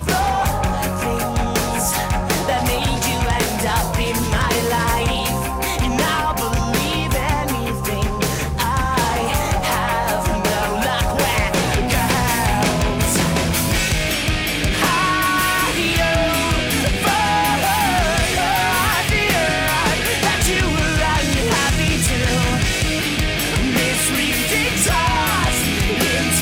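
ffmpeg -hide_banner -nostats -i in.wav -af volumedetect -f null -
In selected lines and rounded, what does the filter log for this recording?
mean_volume: -18.3 dB
max_volume: -7.0 dB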